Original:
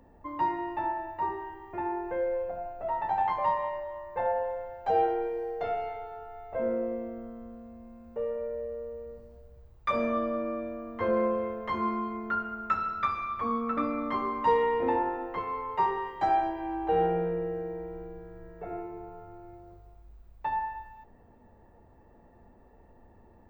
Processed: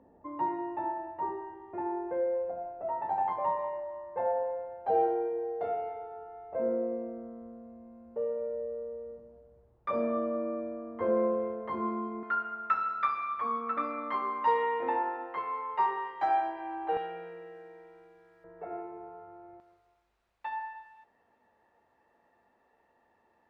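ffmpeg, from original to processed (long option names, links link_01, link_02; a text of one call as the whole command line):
ffmpeg -i in.wav -af "asetnsamples=nb_out_samples=441:pad=0,asendcmd='12.23 bandpass f 1400;16.97 bandpass f 3700;18.44 bandpass f 850;19.6 bandpass f 2800',bandpass=frequency=420:width_type=q:width=0.61:csg=0" out.wav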